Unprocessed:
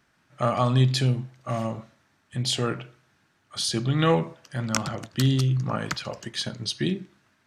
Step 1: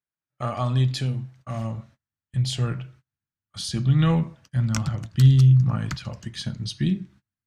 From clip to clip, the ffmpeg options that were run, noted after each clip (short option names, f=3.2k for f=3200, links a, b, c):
-af "flanger=delay=1.9:depth=2.3:regen=-81:speed=0.38:shape=sinusoidal,asubboost=boost=8.5:cutoff=150,agate=range=-28dB:threshold=-49dB:ratio=16:detection=peak"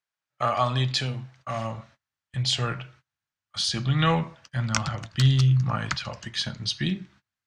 -filter_complex "[0:a]acrossover=split=540 7300:gain=0.251 1 0.112[a][b][c];[a][b][c]amix=inputs=3:normalize=0,volume=7dB"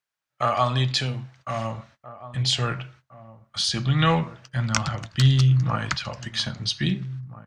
-filter_complex "[0:a]asplit=2[a][b];[b]adelay=1633,volume=-16dB,highshelf=f=4k:g=-36.7[c];[a][c]amix=inputs=2:normalize=0,volume=2dB"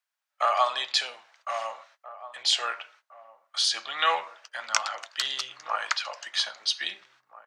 -af "highpass=f=620:w=0.5412,highpass=f=620:w=1.3066"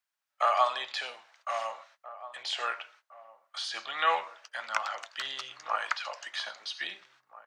-filter_complex "[0:a]acrossover=split=2500[a][b];[b]acompressor=threshold=-36dB:ratio=4:attack=1:release=60[c];[a][c]amix=inputs=2:normalize=0,volume=-1.5dB"